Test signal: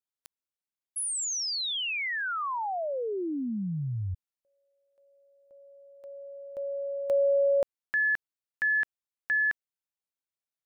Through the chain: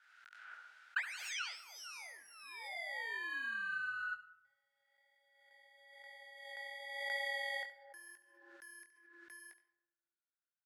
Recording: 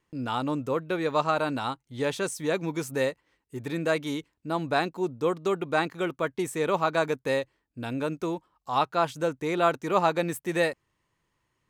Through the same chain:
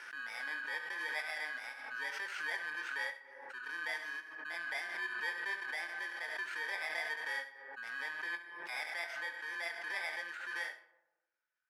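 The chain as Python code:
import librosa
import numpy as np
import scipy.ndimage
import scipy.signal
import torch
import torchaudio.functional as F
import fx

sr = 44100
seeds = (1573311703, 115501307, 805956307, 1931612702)

y = fx.bit_reversed(x, sr, seeds[0], block=32)
y = fx.peak_eq(y, sr, hz=1100.0, db=-10.0, octaves=0.26)
y = fx.rider(y, sr, range_db=4, speed_s=2.0)
y = fx.chorus_voices(y, sr, voices=2, hz=0.9, base_ms=22, depth_ms=4.6, mix_pct=30)
y = fx.ladder_bandpass(y, sr, hz=1500.0, resonance_pct=85)
y = y + 10.0 ** (-13.0 / 20.0) * np.pad(y, (int(70 * sr / 1000.0), 0))[:len(y)]
y = fx.rev_freeverb(y, sr, rt60_s=1.1, hf_ratio=0.35, predelay_ms=50, drr_db=16.0)
y = fx.pre_swell(y, sr, db_per_s=40.0)
y = y * librosa.db_to_amplitude(8.0)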